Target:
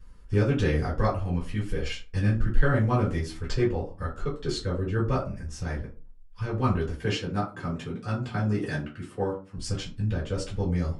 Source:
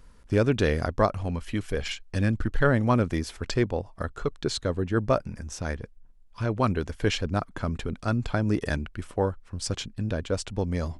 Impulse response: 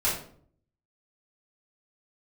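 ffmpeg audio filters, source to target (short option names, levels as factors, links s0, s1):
-filter_complex "[0:a]asettb=1/sr,asplit=3[s0][s1][s2];[s0]atrim=end=6.934[s3];[s1]atrim=start=6.93:end=9.58,asetpts=PTS-STARTPTS,afade=t=in:d=0.004:c=qsin,afade=t=out:st=2.646:d=0.004:c=qsin,highpass=f=110:w=0.5412,highpass=f=110:w=1.3066[s4];[s2]atrim=start=9.576[s5];[s3][s4]acrossfade=d=0.004:c1=hsin:c2=qsin[s6];[s6][s5]acrossfade=d=0.004:c1=qsin:c2=hsin[s7];[1:a]atrim=start_sample=2205,asetrate=88200,aresample=44100[s8];[s7][s8]afir=irnorm=-1:irlink=0,volume=0.422"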